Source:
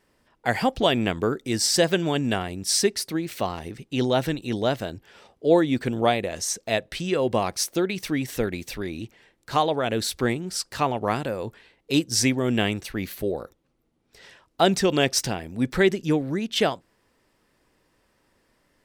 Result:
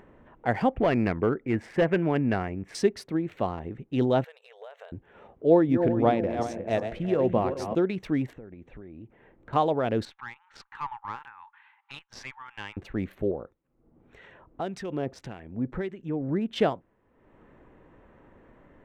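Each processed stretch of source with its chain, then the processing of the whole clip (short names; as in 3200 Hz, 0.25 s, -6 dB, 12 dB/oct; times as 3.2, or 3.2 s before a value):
0.73–2.75 resonant high shelf 3100 Hz -11 dB, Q 3 + hard clip -15.5 dBFS
4.24–4.92 tilt shelf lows -7 dB, about 1400 Hz + compressor 12:1, threshold -35 dBFS + brick-wall FIR high-pass 420 Hz
5.5–7.75 regenerating reverse delay 0.186 s, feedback 56%, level -7.5 dB + high shelf 2500 Hz -5.5 dB
8.33–9.53 compressor 12:1, threshold -39 dBFS + LPF 2200 Hz 6 dB/oct
10.05–12.77 brick-wall FIR high-pass 790 Hz + air absorption 130 m + tube stage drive 21 dB, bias 0.35
13.31–16.29 compressor 2:1, threshold -27 dBFS + harmonic tremolo 1.7 Hz, crossover 1400 Hz
whole clip: Wiener smoothing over 9 samples; LPF 1100 Hz 6 dB/oct; upward compressor, threshold -42 dBFS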